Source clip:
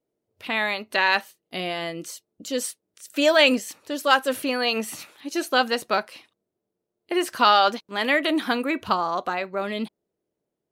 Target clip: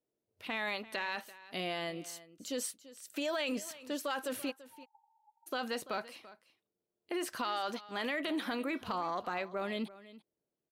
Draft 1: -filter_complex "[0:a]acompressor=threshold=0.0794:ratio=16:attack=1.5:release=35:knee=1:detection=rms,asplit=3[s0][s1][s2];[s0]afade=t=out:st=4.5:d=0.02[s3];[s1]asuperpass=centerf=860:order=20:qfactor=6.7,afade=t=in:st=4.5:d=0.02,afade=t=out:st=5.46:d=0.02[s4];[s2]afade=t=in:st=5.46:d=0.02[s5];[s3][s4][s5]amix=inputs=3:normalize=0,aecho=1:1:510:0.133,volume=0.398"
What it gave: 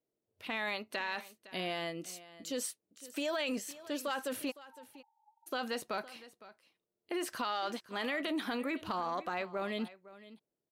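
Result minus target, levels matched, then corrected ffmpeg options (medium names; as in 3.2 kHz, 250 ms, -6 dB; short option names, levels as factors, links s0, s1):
echo 172 ms late
-filter_complex "[0:a]acompressor=threshold=0.0794:ratio=16:attack=1.5:release=35:knee=1:detection=rms,asplit=3[s0][s1][s2];[s0]afade=t=out:st=4.5:d=0.02[s3];[s1]asuperpass=centerf=860:order=20:qfactor=6.7,afade=t=in:st=4.5:d=0.02,afade=t=out:st=5.46:d=0.02[s4];[s2]afade=t=in:st=5.46:d=0.02[s5];[s3][s4][s5]amix=inputs=3:normalize=0,aecho=1:1:338:0.133,volume=0.398"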